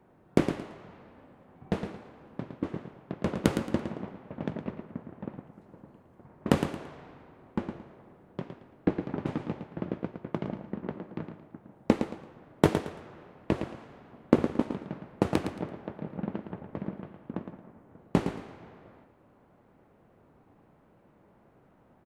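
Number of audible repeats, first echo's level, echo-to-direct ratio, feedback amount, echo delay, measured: 3, -8.0 dB, -7.5 dB, 27%, 112 ms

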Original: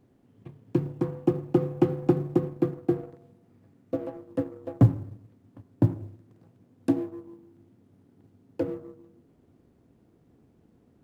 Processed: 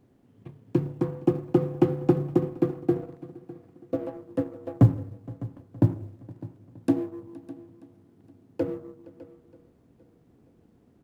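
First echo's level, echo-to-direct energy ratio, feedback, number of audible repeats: -22.5 dB, -16.5 dB, no regular repeats, 4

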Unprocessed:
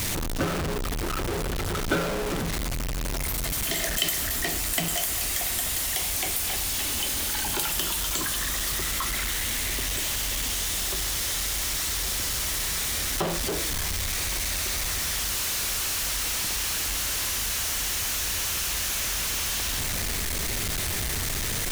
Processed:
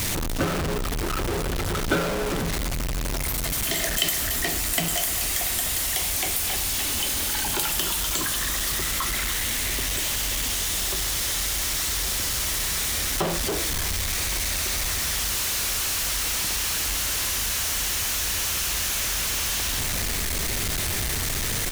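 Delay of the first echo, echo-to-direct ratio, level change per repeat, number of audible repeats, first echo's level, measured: 293 ms, -16.5 dB, no regular repeats, 1, -16.5 dB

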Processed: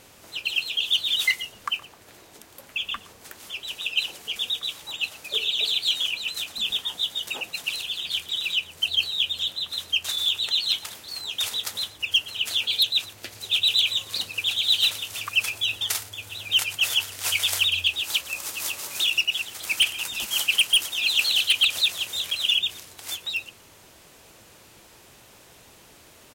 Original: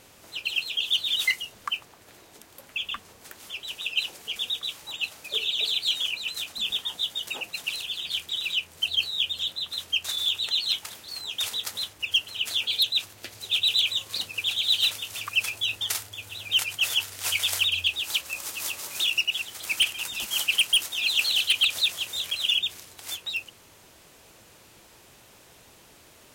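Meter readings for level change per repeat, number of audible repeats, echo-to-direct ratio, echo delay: no regular repeats, 1, -21.0 dB, 118 ms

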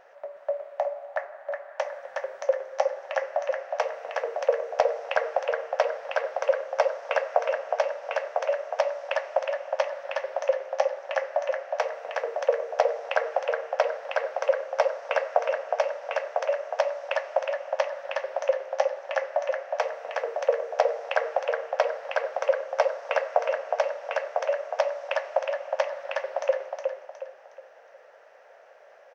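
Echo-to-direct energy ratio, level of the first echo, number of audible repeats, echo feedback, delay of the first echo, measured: -4.5 dB, -5.0 dB, 4, 36%, 364 ms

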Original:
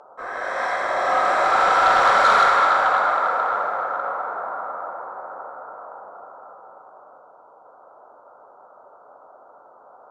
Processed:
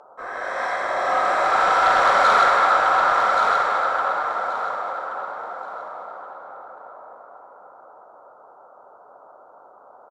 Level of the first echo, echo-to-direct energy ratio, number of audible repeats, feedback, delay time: -5.5 dB, -5.5 dB, 3, 23%, 1127 ms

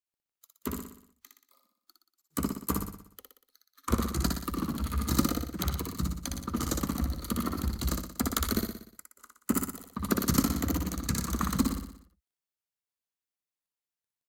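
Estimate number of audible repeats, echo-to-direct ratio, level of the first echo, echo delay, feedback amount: 6, -2.5 dB, -4.0 dB, 60 ms, 54%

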